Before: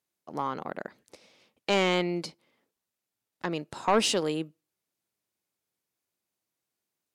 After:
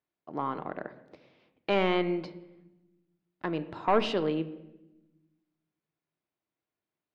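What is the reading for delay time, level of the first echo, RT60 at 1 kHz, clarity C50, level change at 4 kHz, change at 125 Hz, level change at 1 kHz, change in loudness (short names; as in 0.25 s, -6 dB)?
none, none, 0.90 s, 14.5 dB, -7.0 dB, -1.0 dB, -1.0 dB, -2.0 dB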